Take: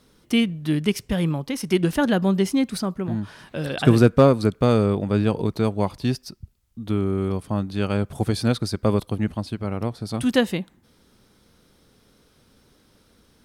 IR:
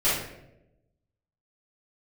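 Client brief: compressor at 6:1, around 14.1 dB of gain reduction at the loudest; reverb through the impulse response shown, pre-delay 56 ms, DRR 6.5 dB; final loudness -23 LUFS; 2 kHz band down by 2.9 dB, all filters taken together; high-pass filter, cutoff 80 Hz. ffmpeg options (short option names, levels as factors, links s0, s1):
-filter_complex "[0:a]highpass=80,equalizer=f=2000:t=o:g=-4,acompressor=threshold=0.0562:ratio=6,asplit=2[s0][s1];[1:a]atrim=start_sample=2205,adelay=56[s2];[s1][s2]afir=irnorm=-1:irlink=0,volume=0.0944[s3];[s0][s3]amix=inputs=2:normalize=0,volume=2.24"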